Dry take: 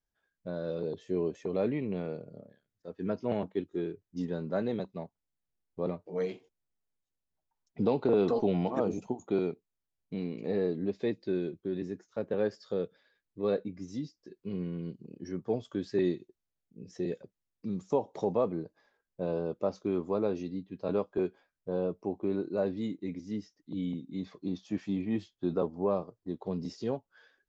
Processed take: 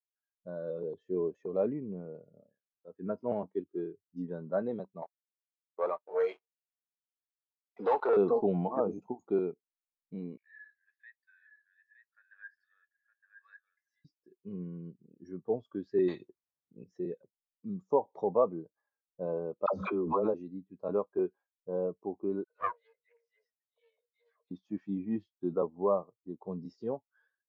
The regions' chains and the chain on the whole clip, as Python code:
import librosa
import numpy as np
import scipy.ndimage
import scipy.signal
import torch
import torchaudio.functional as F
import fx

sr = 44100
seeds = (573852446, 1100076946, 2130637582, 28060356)

y = fx.chain(x, sr, fx.lowpass(hz=1000.0, slope=6),
    fx.peak_eq(hz=730.0, db=-3.0, octaves=1.2), at=(1.73, 2.15))
y = fx.chain(y, sr, fx.highpass(hz=670.0, slope=12),
    fx.leveller(passes=3), at=(5.02, 8.17))
y = fx.chain(y, sr, fx.ladder_highpass(hz=1600.0, resonance_pct=80),
    fx.echo_single(ms=915, db=-6.0), at=(10.37, 14.05))
y = fx.chain(y, sr, fx.highpass(hz=55.0, slope=12),
    fx.spectral_comp(ratio=2.0), at=(16.08, 16.84))
y = fx.chain(y, sr, fx.dispersion(late='lows', ms=80.0, hz=610.0),
    fx.pre_swell(db_per_s=31.0), at=(19.66, 20.34))
y = fx.chain(y, sr, fx.cheby_ripple_highpass(hz=450.0, ripple_db=9),
    fx.dispersion(late='lows', ms=57.0, hz=1600.0),
    fx.doppler_dist(depth_ms=0.88), at=(22.44, 24.51))
y = fx.peak_eq(y, sr, hz=1100.0, db=9.0, octaves=1.5)
y = fx.spectral_expand(y, sr, expansion=1.5)
y = y * librosa.db_to_amplitude(-2.5)